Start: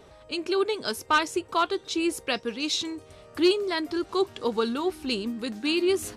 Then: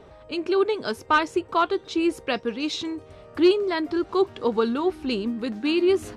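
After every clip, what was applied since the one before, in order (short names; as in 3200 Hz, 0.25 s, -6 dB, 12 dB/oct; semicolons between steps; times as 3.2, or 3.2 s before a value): LPF 1900 Hz 6 dB/oct; gain +4 dB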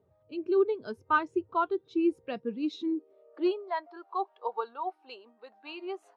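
high-pass sweep 100 Hz -> 760 Hz, 2.25–3.63; spectral expander 1.5:1; gain -5 dB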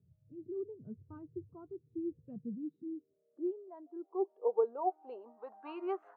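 low-pass sweep 150 Hz -> 1500 Hz, 3.18–6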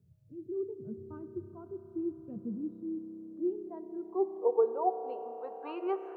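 reverb RT60 5.3 s, pre-delay 31 ms, DRR 9 dB; gain +3.5 dB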